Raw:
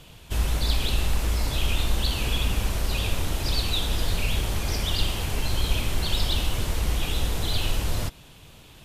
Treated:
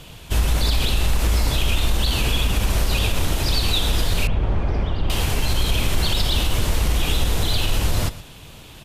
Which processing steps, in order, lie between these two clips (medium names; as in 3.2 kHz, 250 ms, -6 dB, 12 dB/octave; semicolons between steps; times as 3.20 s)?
delay 121 ms -17 dB; peak limiter -17 dBFS, peak gain reduction 7 dB; 4.27–5.10 s: Bessel low-pass 1.1 kHz, order 2; trim +7 dB